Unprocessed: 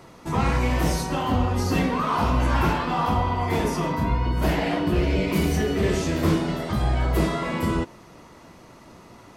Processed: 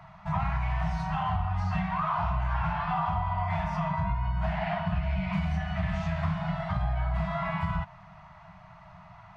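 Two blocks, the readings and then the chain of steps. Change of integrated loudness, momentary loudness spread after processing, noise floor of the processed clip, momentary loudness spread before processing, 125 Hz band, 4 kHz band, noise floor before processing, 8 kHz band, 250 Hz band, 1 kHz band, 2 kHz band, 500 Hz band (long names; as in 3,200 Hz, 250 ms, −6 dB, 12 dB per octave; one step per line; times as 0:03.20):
−6.5 dB, 2 LU, −51 dBFS, 3 LU, −4.5 dB, −12.5 dB, −48 dBFS, below −20 dB, −10.0 dB, −4.0 dB, −6.0 dB, −11.5 dB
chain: brick-wall band-stop 200–610 Hz
low-pass filter 2,100 Hz 12 dB per octave
downward compressor, threshold −25 dBFS, peak gain reduction 7.5 dB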